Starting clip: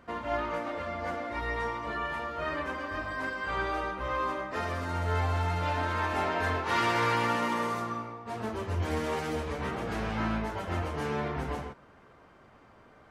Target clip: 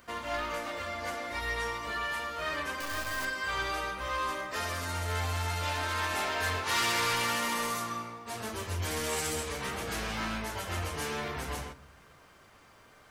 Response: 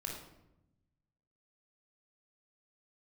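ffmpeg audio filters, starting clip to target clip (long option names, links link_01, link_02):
-filter_complex "[0:a]asettb=1/sr,asplit=3[link_01][link_02][link_03];[link_01]atrim=end=9.094[link_04];[link_02]atrim=start=9.09:end=9.49,asetpts=PTS-STARTPTS,afade=type=in:duration=0.004:curve=qsin,afade=type=out:start_time=0.396:duration=0.004:curve=qsin,equalizer=frequency=8000:width=3.7:gain=8[link_05];[link_03]atrim=start=9.486[link_06];[link_04][link_05]acrossfade=duration=0.004:curve1=hsin:curve2=qsin[link_07];[link_07][link_06]acrossfade=duration=0.004:curve1=qsin:curve2=hsin,asoftclip=type=tanh:threshold=-24dB,crystalizer=i=8:c=0,asettb=1/sr,asplit=3[link_08][link_09][link_10];[link_08]atrim=end=2.804[link_11];[link_09]atrim=start=2.8:end=3.25,asetpts=PTS-STARTPTS,afade=type=in:duration=0.004:curve=qsin,afade=type=out:start_time=0.446:duration=0.004:curve=qsin,acrusher=bits=6:dc=4:mix=0:aa=0.000001[link_12];[link_10]atrim=start=3.246[link_13];[link_11][link_12]acrossfade=duration=0.004:curve1=hsin:curve2=qsin[link_14];[link_14][link_13]acrossfade=duration=0.004:curve1=qsin:curve2=hsin,asplit=2[link_15][link_16];[1:a]atrim=start_sample=2205,lowshelf=frequency=200:gain=11.5[link_17];[link_16][link_17]afir=irnorm=-1:irlink=0,volume=-15.5dB[link_18];[link_15][link_18]amix=inputs=2:normalize=0,volume=-6dB"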